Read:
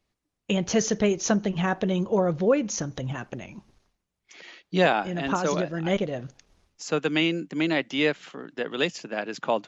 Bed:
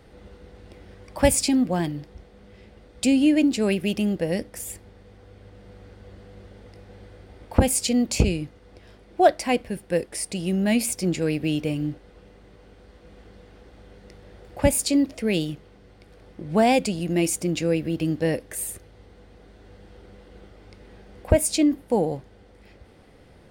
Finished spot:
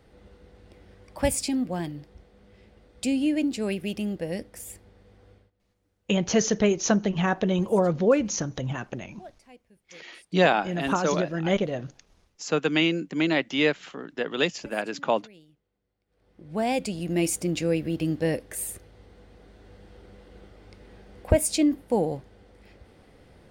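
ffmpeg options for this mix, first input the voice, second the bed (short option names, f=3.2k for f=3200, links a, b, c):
-filter_complex "[0:a]adelay=5600,volume=1dB[a];[1:a]volume=21dB,afade=t=out:st=5.31:d=0.2:silence=0.0707946,afade=t=in:st=16.07:d=1.17:silence=0.0446684[b];[a][b]amix=inputs=2:normalize=0"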